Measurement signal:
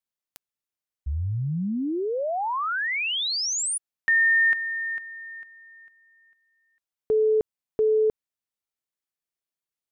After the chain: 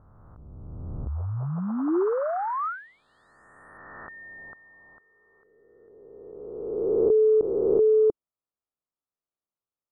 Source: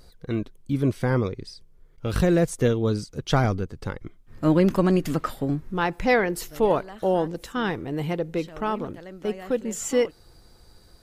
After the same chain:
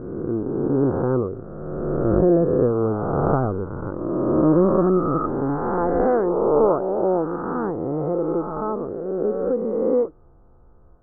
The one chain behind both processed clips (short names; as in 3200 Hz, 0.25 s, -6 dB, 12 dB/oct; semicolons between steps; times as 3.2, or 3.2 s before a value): spectral swells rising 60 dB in 2.42 s; elliptic low-pass 1300 Hz, stop band 50 dB; dynamic EQ 360 Hz, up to +6 dB, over -34 dBFS, Q 2; gain -2 dB